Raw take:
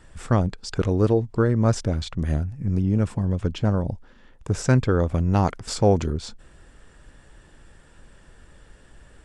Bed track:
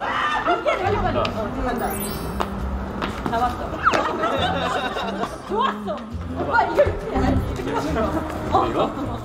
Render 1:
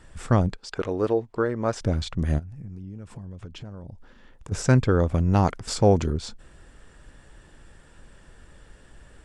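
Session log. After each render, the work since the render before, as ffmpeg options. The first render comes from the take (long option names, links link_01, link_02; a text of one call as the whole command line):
ffmpeg -i in.wav -filter_complex "[0:a]asettb=1/sr,asplit=3[link_01][link_02][link_03];[link_01]atrim=end=0.574[link_04];[link_02]atrim=start=0.57:end=1.81,asetpts=PTS-STARTPTS,afade=type=in:duration=0.004:curve=qsin,afade=type=out:start_time=1.236:duration=0.004:curve=qsin,bass=frequency=250:gain=-14,treble=frequency=4000:gain=-7[link_05];[link_03]atrim=start=1.806[link_06];[link_04][link_05]acrossfade=duration=0.004:curve1=hsin:curve2=qsin[link_07];[link_07][link_06]acrossfade=duration=0.004:curve1=qsin:curve2=hsin,asplit=3[link_08][link_09][link_10];[link_08]afade=type=out:start_time=2.38:duration=0.02[link_11];[link_09]acompressor=threshold=-36dB:ratio=6:attack=3.2:release=140:knee=1:detection=peak,afade=type=in:start_time=2.38:duration=0.02,afade=type=out:start_time=4.51:duration=0.02[link_12];[link_10]afade=type=in:start_time=4.51:duration=0.02[link_13];[link_11][link_12][link_13]amix=inputs=3:normalize=0" out.wav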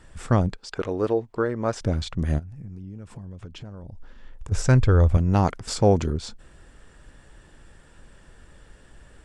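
ffmpeg -i in.wav -filter_complex "[0:a]asettb=1/sr,asplit=3[link_01][link_02][link_03];[link_01]atrim=end=3.614[link_04];[link_02]atrim=start=3.61:end=5.17,asetpts=PTS-STARTPTS,afade=type=in:duration=0.004:curve=qsin,afade=type=out:start_time=1.556:duration=0.004:curve=qsin,asubboost=boost=11.5:cutoff=85[link_05];[link_03]atrim=start=5.166[link_06];[link_04][link_05]acrossfade=duration=0.004:curve1=hsin:curve2=qsin[link_07];[link_07][link_06]acrossfade=duration=0.004:curve1=qsin:curve2=hsin" out.wav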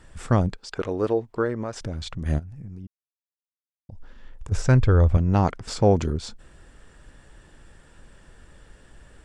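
ffmpeg -i in.wav -filter_complex "[0:a]asettb=1/sr,asplit=3[link_01][link_02][link_03];[link_01]atrim=end=1.634[link_04];[link_02]atrim=start=1.63:end=2.26,asetpts=PTS-STARTPTS,afade=type=in:duration=0.004:curve=qsin,afade=type=out:start_time=0.626:duration=0.004:curve=qsin,acompressor=threshold=-29dB:ratio=2.5:attack=3.2:release=140:knee=1:detection=peak[link_05];[link_03]atrim=start=2.256[link_06];[link_04][link_05]acrossfade=duration=0.004:curve1=hsin:curve2=qsin[link_07];[link_07][link_06]acrossfade=duration=0.004:curve1=qsin:curve2=hsin,asettb=1/sr,asplit=3[link_08][link_09][link_10];[link_08]atrim=end=4.574[link_11];[link_09]atrim=start=4.57:end=5.98,asetpts=PTS-STARTPTS,afade=type=in:duration=0.004:curve=qsin,afade=type=out:start_time=1.406:duration=0.004:curve=qsin,highshelf=frequency=7400:gain=-9.5[link_12];[link_10]atrim=start=5.976[link_13];[link_11][link_12]acrossfade=duration=0.004:curve1=hsin:curve2=qsin[link_14];[link_14][link_13]acrossfade=duration=0.004:curve1=qsin:curve2=hsin,asplit=3[link_15][link_16][link_17];[link_15]atrim=end=2.87,asetpts=PTS-STARTPTS,afade=type=out:start_time=2.866:duration=0.004:curve=hsin[link_18];[link_16]atrim=start=2.87:end=3.89,asetpts=PTS-STARTPTS,volume=0[link_19];[link_17]atrim=start=3.89,asetpts=PTS-STARTPTS,afade=type=in:duration=0.004:curve=hsin[link_20];[link_18][link_19][link_20]concat=n=3:v=0:a=1" out.wav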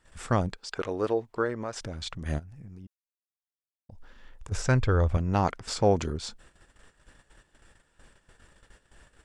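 ffmpeg -i in.wav -af "agate=range=-12dB:threshold=-47dB:ratio=16:detection=peak,lowshelf=frequency=460:gain=-7.5" out.wav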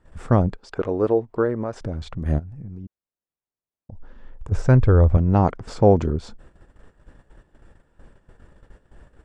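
ffmpeg -i in.wav -af "tiltshelf=frequency=1500:gain=9.5" out.wav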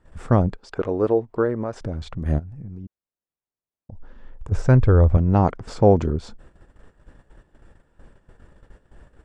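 ffmpeg -i in.wav -af anull out.wav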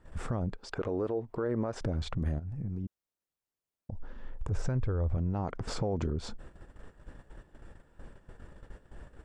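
ffmpeg -i in.wav -af "acompressor=threshold=-18dB:ratio=6,alimiter=limit=-23dB:level=0:latency=1:release=99" out.wav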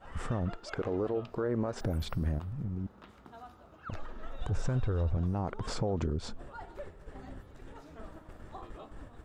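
ffmpeg -i in.wav -i bed.wav -filter_complex "[1:a]volume=-28.5dB[link_01];[0:a][link_01]amix=inputs=2:normalize=0" out.wav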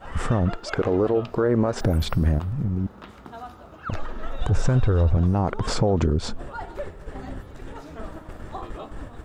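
ffmpeg -i in.wav -af "volume=11dB" out.wav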